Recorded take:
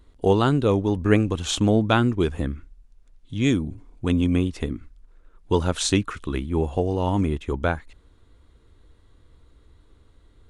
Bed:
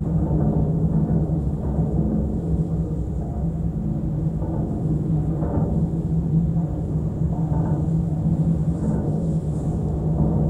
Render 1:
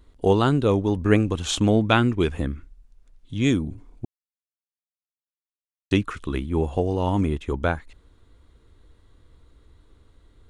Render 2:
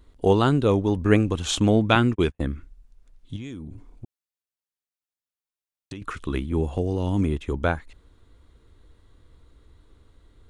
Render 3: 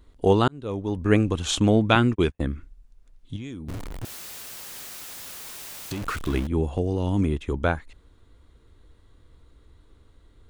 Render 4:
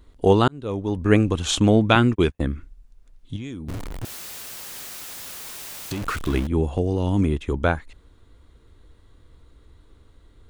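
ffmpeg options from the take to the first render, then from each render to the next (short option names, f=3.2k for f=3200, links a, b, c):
-filter_complex "[0:a]asettb=1/sr,asplit=3[a][b][c];[a]atrim=end=1.634[d];[b]atrim=start=1.63:end=2.38,asetpts=PTS-STARTPTS,afade=t=in:d=0.004:c=qsin,afade=t=out:st=0.746:d=0.004:c=qsin,equalizer=f=2.3k:w=1.5:g=5[e];[c]atrim=start=2.376[f];[d][e]acrossfade=d=0.004:c1=hsin:c2=qsin[g];[g][f]acrossfade=d=0.004:c1=qsin:c2=hsin,asplit=3[h][i][j];[h]atrim=end=4.05,asetpts=PTS-STARTPTS,afade=t=out:st=4.046:d=0.004:c=hsin[k];[i]atrim=start=4.05:end=5.91,asetpts=PTS-STARTPTS,volume=0[l];[j]atrim=start=5.91,asetpts=PTS-STARTPTS,afade=t=in:d=0.004:c=hsin[m];[k][l][m]concat=n=3:v=0:a=1"
-filter_complex "[0:a]asettb=1/sr,asplit=3[a][b][c];[a]atrim=end=1.954[d];[b]atrim=start=1.95:end=2.45,asetpts=PTS-STARTPTS,afade=t=in:d=0.004:c=qsin,afade=t=out:st=0.496:d=0.004:c=qsin,agate=range=-47dB:threshold=-27dB:ratio=16:release=100:detection=peak[e];[c]atrim=start=2.446[f];[d][e]acrossfade=d=0.004:c1=hsin:c2=qsin[g];[g][f]acrossfade=d=0.004:c1=qsin:c2=hsin,asettb=1/sr,asplit=3[h][i][j];[h]atrim=end=3.364[k];[i]atrim=start=3.36:end=6.02,asetpts=PTS-STARTPTS,afade=t=in:d=0.004:c=qsin,afade=t=out:st=2.656:d=0.004:c=qsin,acompressor=threshold=-33dB:ratio=8:attack=3.2:release=140:knee=1:detection=peak[l];[j]atrim=start=6.016[m];[k][l]acrossfade=d=0.004:c1=hsin:c2=qsin[n];[n][m]acrossfade=d=0.004:c1=qsin:c2=hsin,asettb=1/sr,asplit=3[o][p][q];[o]atrim=end=6.524[r];[p]atrim=start=6.52:end=7.57,asetpts=PTS-STARTPTS,afade=t=in:d=0.004:c=qsin,afade=t=out:st=1.046:d=0.004:c=qsin,acrossover=split=450|3000[s][t][u];[t]acompressor=threshold=-34dB:ratio=6:attack=3.2:release=140:knee=2.83:detection=peak[v];[s][v][u]amix=inputs=3:normalize=0[w];[q]atrim=start=7.566[x];[r][w]acrossfade=d=0.004:c1=hsin:c2=qsin[y];[y][x]acrossfade=d=0.004:c1=qsin:c2=hsin"
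-filter_complex "[0:a]asettb=1/sr,asplit=3[a][b][c];[a]atrim=end=3.684[d];[b]atrim=start=3.68:end=6.47,asetpts=PTS-STARTPTS,afade=t=in:d=0.004:c=qsin,afade=t=out:st=2.786:d=0.004:c=qsin,aeval=exprs='val(0)+0.5*0.0335*sgn(val(0))':c=same[e];[c]atrim=start=6.466[f];[d][e]acrossfade=d=0.004:c1=hsin:c2=qsin[g];[g][f]acrossfade=d=0.004:c1=qsin:c2=hsin,asplit=2[h][i];[h]atrim=end=0.48,asetpts=PTS-STARTPTS,afade=t=out:st=0.476:d=0.004:c=hsin[j];[i]atrim=start=0.48,asetpts=PTS-STARTPTS,afade=t=in:d=0.74[k];[j][k]concat=n=2:v=0:a=1"
-af "volume=2.5dB,alimiter=limit=-2dB:level=0:latency=1"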